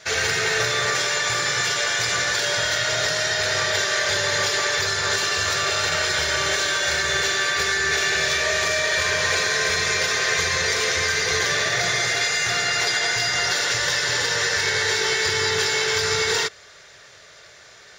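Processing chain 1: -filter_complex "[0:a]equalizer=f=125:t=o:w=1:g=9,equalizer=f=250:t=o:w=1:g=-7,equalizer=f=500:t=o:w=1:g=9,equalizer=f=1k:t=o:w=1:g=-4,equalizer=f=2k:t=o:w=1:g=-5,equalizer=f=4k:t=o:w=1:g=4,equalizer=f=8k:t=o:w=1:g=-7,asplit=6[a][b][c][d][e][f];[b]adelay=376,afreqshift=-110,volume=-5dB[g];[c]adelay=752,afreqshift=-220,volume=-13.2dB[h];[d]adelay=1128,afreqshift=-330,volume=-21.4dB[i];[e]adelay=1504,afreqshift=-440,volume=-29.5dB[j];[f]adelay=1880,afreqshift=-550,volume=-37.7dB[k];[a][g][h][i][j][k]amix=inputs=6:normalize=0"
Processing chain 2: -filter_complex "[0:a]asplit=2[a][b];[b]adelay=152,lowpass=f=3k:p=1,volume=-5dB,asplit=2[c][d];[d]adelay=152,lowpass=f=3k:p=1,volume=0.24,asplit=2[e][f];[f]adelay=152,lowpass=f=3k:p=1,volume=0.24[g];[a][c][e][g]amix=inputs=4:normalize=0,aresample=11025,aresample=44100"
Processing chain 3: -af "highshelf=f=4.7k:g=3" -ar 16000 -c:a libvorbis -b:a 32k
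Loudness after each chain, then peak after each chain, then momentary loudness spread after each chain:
-19.5, -20.0, -18.5 LUFS; -7.5, -8.5, -6.0 dBFS; 2, 1, 1 LU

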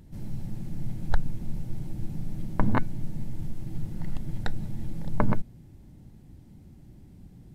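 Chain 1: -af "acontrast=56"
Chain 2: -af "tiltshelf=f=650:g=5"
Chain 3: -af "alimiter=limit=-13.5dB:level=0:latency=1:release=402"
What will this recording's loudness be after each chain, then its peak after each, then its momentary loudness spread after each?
-29.0, -30.5, -37.0 LUFS; -2.5, -3.5, -13.5 dBFS; 21, 21, 17 LU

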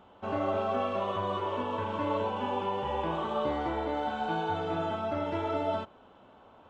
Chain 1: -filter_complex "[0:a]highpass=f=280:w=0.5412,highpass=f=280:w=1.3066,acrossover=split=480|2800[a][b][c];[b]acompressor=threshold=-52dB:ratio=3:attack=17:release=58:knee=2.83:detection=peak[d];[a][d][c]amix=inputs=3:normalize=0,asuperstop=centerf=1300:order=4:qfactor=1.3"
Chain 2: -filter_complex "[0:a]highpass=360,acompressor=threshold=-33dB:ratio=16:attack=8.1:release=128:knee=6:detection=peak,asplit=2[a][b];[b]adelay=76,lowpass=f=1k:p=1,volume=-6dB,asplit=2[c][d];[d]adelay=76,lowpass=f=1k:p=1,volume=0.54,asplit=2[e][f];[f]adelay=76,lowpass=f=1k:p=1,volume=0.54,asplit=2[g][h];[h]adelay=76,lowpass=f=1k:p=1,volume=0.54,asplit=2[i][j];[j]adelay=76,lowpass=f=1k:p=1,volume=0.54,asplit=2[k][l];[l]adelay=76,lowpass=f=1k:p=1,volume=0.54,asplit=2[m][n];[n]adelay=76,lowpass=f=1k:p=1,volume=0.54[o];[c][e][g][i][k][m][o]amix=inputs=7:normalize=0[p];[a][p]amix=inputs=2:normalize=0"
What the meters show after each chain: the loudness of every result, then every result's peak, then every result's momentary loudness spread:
-39.0, -37.0 LUFS; -25.5, -24.5 dBFS; 3, 3 LU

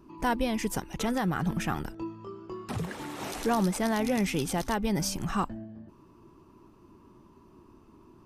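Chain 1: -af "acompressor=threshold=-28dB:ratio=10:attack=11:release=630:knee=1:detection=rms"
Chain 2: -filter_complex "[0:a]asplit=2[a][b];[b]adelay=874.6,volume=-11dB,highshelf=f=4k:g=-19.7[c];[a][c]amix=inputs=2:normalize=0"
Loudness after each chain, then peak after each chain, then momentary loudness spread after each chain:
-36.0, -30.5 LUFS; -20.0, -15.0 dBFS; 8, 15 LU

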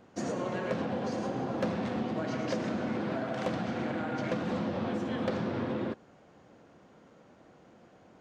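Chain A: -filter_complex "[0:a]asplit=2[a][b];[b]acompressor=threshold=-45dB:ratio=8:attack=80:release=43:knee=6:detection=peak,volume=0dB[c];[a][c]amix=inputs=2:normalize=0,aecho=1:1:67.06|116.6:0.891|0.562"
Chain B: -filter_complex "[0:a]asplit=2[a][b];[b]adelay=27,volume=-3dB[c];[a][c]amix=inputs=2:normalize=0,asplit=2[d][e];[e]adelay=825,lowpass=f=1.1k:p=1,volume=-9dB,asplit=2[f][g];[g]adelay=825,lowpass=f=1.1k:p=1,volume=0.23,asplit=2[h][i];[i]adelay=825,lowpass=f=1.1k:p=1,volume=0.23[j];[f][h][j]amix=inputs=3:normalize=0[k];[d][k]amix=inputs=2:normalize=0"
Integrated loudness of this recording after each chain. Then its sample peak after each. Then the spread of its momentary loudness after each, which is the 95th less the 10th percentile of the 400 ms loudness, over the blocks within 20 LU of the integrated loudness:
-27.5, -32.0 LUFS; -14.5, -18.5 dBFS; 1, 10 LU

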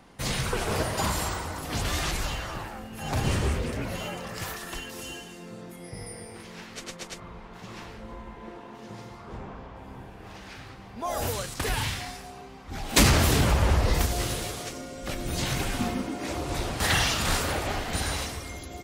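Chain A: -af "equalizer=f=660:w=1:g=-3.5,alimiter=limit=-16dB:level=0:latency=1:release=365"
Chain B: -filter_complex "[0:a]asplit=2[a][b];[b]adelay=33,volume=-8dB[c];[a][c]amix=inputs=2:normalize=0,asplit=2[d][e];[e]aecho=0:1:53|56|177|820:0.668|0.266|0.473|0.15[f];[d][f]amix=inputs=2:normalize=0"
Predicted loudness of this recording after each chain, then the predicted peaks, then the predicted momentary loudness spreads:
-30.5, -25.0 LUFS; -16.0, -3.5 dBFS; 17, 20 LU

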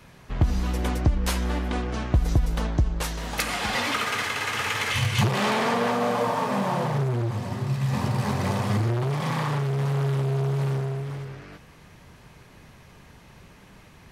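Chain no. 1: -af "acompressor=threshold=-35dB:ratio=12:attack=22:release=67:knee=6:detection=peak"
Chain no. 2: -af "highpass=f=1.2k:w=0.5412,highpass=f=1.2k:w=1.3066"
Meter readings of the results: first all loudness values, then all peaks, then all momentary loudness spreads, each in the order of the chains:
-36.0, -31.5 LUFS; -19.5, -11.5 dBFS; 17, 17 LU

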